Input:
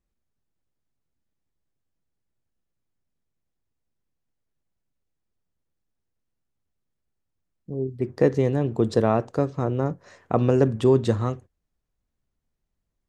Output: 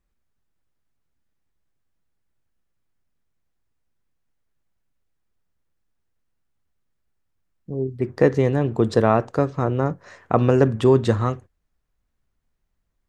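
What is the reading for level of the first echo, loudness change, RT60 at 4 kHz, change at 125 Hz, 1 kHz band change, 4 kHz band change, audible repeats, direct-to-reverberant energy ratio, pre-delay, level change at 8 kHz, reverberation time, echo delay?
no echo audible, +3.0 dB, no reverb audible, +2.5 dB, +5.0 dB, +3.5 dB, no echo audible, no reverb audible, no reverb audible, can't be measured, no reverb audible, no echo audible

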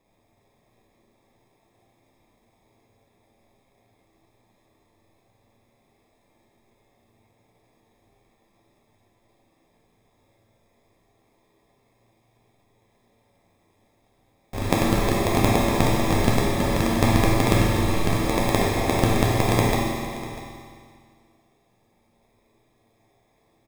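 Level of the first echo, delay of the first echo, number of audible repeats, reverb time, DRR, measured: −16.5 dB, 645 ms, 1, 2.3 s, −5.5 dB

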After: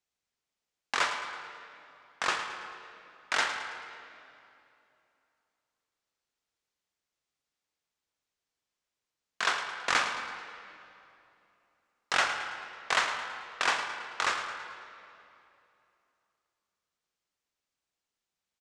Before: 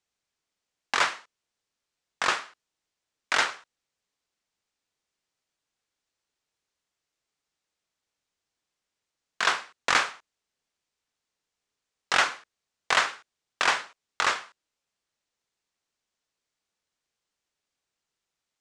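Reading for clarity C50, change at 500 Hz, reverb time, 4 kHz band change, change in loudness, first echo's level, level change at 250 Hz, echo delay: 5.5 dB, −3.5 dB, 2.8 s, −3.5 dB, −5.0 dB, −11.0 dB, −3.5 dB, 109 ms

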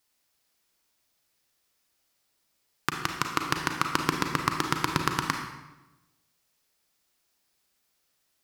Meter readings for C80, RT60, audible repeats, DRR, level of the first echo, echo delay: 7.0 dB, 1.0 s, no echo audible, 3.0 dB, no echo audible, no echo audible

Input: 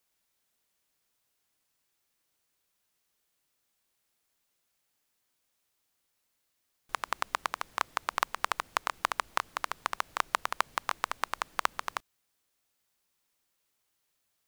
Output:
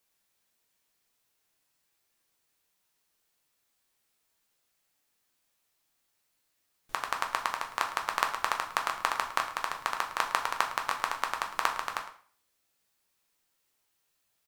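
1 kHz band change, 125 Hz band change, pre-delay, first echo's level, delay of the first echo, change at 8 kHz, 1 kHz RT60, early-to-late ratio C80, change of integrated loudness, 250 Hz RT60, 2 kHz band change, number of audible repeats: +2.0 dB, can't be measured, 6 ms, −14.5 dB, 108 ms, +1.5 dB, 0.45 s, 11.5 dB, +2.0 dB, 0.50 s, +2.0 dB, 1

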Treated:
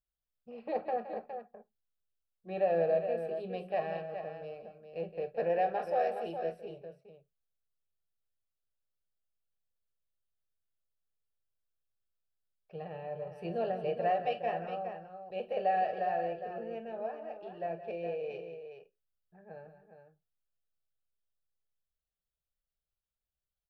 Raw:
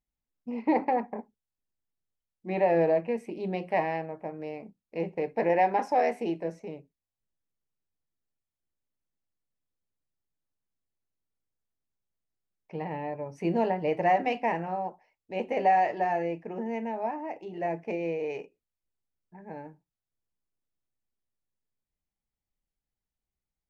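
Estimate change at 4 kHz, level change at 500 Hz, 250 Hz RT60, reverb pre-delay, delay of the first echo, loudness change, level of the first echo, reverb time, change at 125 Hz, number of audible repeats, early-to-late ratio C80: −4.0 dB, −4.0 dB, no reverb audible, no reverb audible, 44 ms, −6.0 dB, −15.5 dB, no reverb audible, −8.0 dB, 3, no reverb audible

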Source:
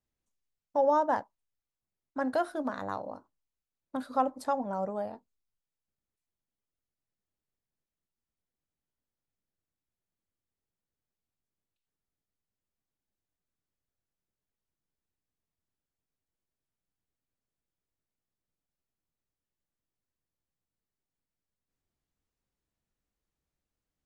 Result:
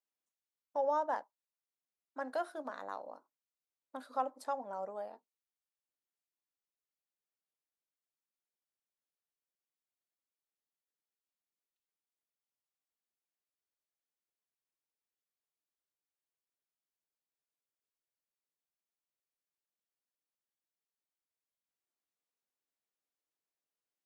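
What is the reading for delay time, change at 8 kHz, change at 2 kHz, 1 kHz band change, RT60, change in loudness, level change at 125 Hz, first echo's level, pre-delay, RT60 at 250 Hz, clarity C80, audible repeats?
no echo audible, −6.5 dB, −6.5 dB, −6.5 dB, no reverb audible, −7.5 dB, below −15 dB, no echo audible, no reverb audible, no reverb audible, no reverb audible, no echo audible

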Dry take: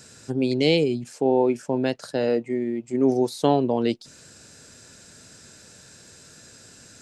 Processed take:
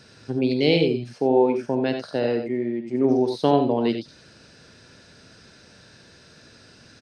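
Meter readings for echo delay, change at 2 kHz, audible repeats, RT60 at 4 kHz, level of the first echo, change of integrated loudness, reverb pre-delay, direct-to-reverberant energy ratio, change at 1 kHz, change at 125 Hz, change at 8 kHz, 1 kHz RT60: 47 ms, +1.0 dB, 2, no reverb audible, −14.0 dB, +1.0 dB, no reverb audible, no reverb audible, +1.5 dB, +1.0 dB, below −10 dB, no reverb audible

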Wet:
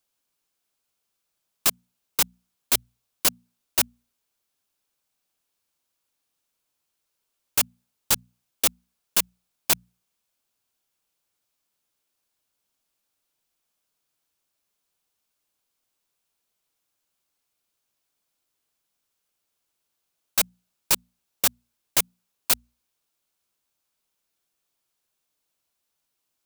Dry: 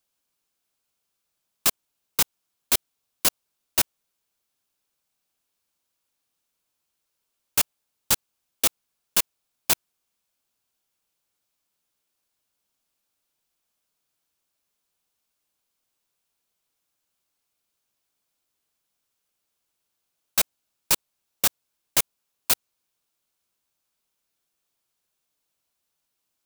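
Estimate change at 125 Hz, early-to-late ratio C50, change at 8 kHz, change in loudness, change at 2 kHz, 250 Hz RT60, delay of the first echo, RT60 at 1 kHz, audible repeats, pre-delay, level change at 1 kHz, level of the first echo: −0.5 dB, no reverb audible, 0.0 dB, 0.0 dB, 0.0 dB, no reverb audible, no echo audible, no reverb audible, no echo audible, no reverb audible, 0.0 dB, no echo audible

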